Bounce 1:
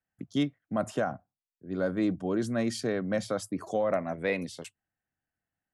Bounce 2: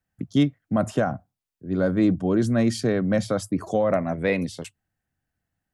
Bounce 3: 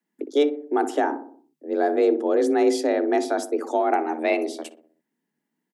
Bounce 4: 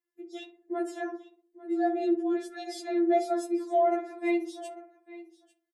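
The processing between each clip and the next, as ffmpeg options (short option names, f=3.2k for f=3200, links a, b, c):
-af "lowshelf=f=190:g=10.5,volume=4.5dB"
-filter_complex "[0:a]asplit=2[a][b];[b]adelay=61,lowpass=f=940:p=1,volume=-9dB,asplit=2[c][d];[d]adelay=61,lowpass=f=940:p=1,volume=0.54,asplit=2[e][f];[f]adelay=61,lowpass=f=940:p=1,volume=0.54,asplit=2[g][h];[h]adelay=61,lowpass=f=940:p=1,volume=0.54,asplit=2[i][j];[j]adelay=61,lowpass=f=940:p=1,volume=0.54,asplit=2[k][l];[l]adelay=61,lowpass=f=940:p=1,volume=0.54[m];[a][c][e][g][i][k][m]amix=inputs=7:normalize=0,afreqshift=150"
-af "aecho=1:1:846:0.119,afftfilt=real='re*4*eq(mod(b,16),0)':imag='im*4*eq(mod(b,16),0)':win_size=2048:overlap=0.75,volume=-7dB"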